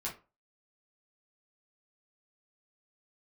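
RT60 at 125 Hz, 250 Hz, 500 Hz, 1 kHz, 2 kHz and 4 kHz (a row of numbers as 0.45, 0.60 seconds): 0.35, 0.30, 0.35, 0.30, 0.25, 0.20 seconds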